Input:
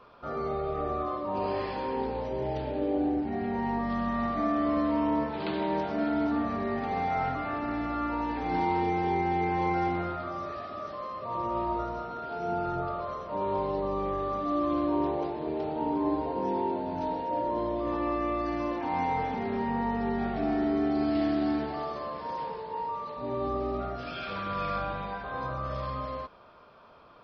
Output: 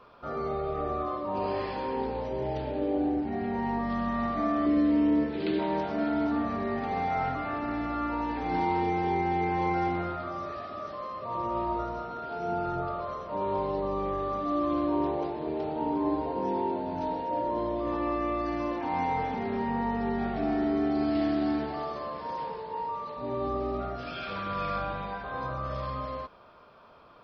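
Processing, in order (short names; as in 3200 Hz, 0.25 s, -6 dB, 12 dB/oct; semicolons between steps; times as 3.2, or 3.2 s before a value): 4.66–5.59 EQ curve 180 Hz 0 dB, 360 Hz +7 dB, 960 Hz -12 dB, 1800 Hz 0 dB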